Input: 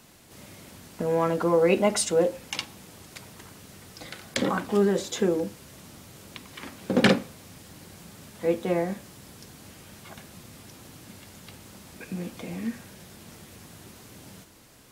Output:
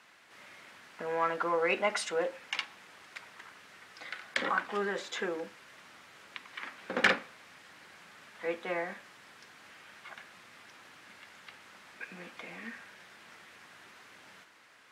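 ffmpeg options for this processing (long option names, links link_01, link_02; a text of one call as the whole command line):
ffmpeg -i in.wav -af "bandpass=frequency=1700:width_type=q:width=1.4:csg=0,asoftclip=type=tanh:threshold=-16.5dB,volume=3.5dB" out.wav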